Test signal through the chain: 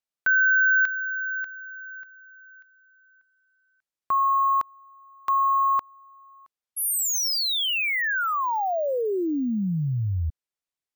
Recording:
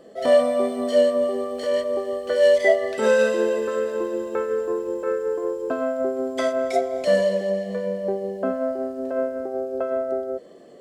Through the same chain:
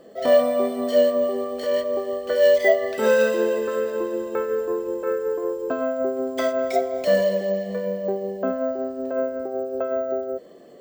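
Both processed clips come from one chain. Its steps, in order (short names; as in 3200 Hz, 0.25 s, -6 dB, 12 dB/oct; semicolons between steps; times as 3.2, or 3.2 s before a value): careless resampling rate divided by 2×, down filtered, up hold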